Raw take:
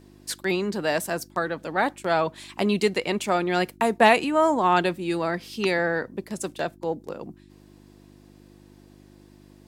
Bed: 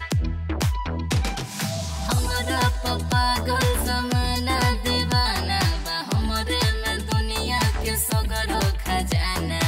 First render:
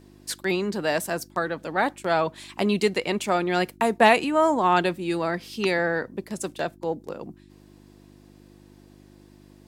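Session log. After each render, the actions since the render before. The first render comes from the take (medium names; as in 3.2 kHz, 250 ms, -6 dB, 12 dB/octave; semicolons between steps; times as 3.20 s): no audible change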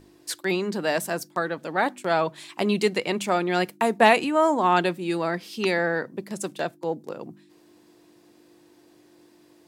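de-hum 50 Hz, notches 5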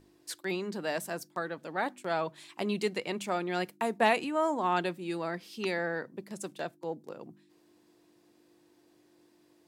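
trim -8.5 dB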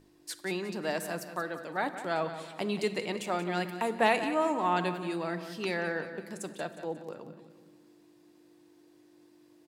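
feedback delay 180 ms, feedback 44%, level -12 dB; simulated room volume 1400 m³, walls mixed, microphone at 0.45 m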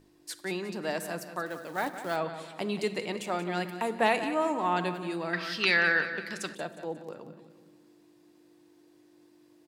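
1.46–2.16 s: short-mantissa float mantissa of 2-bit; 5.33–6.55 s: high-order bell 2.6 kHz +12.5 dB 2.5 oct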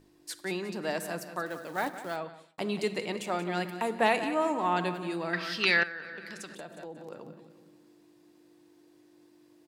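1.86–2.58 s: fade out; 5.83–7.12 s: compression 4:1, threshold -39 dBFS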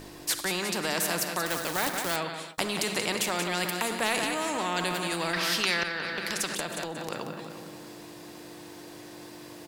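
in parallel at -0.5 dB: compressor with a negative ratio -34 dBFS; on the sum: spectrum-flattening compressor 2:1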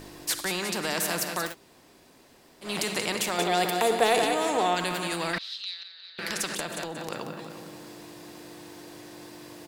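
1.50–2.66 s: room tone, crossfade 0.10 s; 3.38–4.75 s: small resonant body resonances 450/710/3500 Hz, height 12 dB, ringing for 30 ms; 5.38–6.19 s: band-pass filter 3.9 kHz, Q 8.7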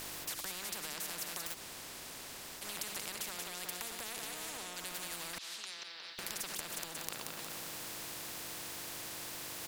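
compression, threshold -32 dBFS, peak gain reduction 14 dB; spectrum-flattening compressor 4:1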